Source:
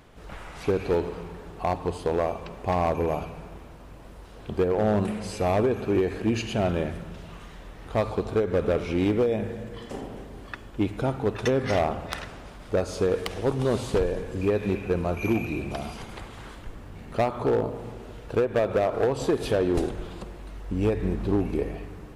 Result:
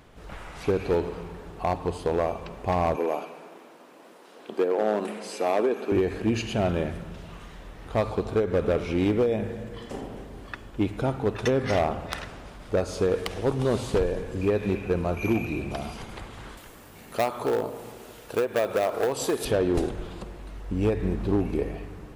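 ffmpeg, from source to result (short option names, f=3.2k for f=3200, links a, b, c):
-filter_complex "[0:a]asettb=1/sr,asplit=3[a][b][c];[a]atrim=end=2.964[d];[b]atrim=start=2.96:end=5.92,asetpts=PTS-STARTPTS,afade=t=in:d=0.004:c=qsin,afade=t=out:st=2.956:d=0.004:c=qsin,highpass=f=260:w=0.5412,highpass=f=260:w=1.3066[e];[c]atrim=start=5.916[f];[d][e]acrossfade=d=0.004:c1=hsin:c2=qsin[g];[g][f]acrossfade=d=0.004:c1=qsin:c2=hsin,asettb=1/sr,asplit=3[h][i][j];[h]atrim=end=16.574[k];[i]atrim=start=16.57:end=19.45,asetpts=PTS-STARTPTS,afade=t=in:d=0.004:c=qsin,afade=t=out:st=2.876:d=0.004:c=qsin,aemphasis=mode=production:type=bsi[l];[j]atrim=start=19.446[m];[k][l]acrossfade=d=0.004:c1=hsin:c2=qsin[n];[n][m]acrossfade=d=0.004:c1=qsin:c2=hsin"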